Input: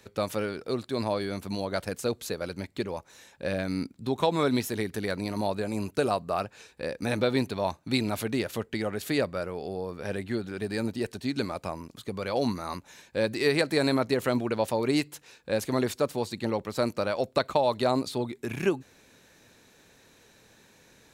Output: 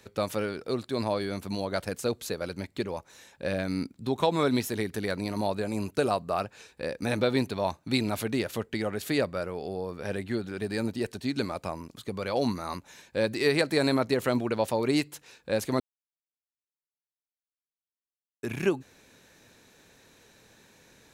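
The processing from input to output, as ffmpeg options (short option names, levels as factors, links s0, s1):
-filter_complex "[0:a]asplit=3[s0][s1][s2];[s0]atrim=end=15.8,asetpts=PTS-STARTPTS,afade=t=out:st=15.796:d=0.004:c=hsin[s3];[s1]atrim=start=15.8:end=18.43,asetpts=PTS-STARTPTS,volume=0[s4];[s2]atrim=start=18.43,asetpts=PTS-STARTPTS,afade=t=in:d=0.004:c=hsin[s5];[s3][s4][s5]concat=n=3:v=0:a=1"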